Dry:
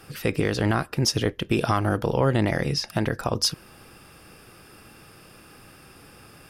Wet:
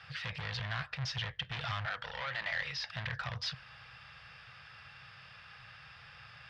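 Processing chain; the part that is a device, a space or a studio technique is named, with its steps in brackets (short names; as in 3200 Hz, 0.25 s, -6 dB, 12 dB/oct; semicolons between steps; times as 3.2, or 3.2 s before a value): 1.85–2.83 weighting filter A; scooped metal amplifier (tube stage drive 30 dB, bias 0.35; speaker cabinet 76–3900 Hz, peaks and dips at 130 Hz +7 dB, 250 Hz -10 dB, 390 Hz -10 dB, 1800 Hz +4 dB, 2600 Hz -3 dB; passive tone stack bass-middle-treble 10-0-10); gain +6 dB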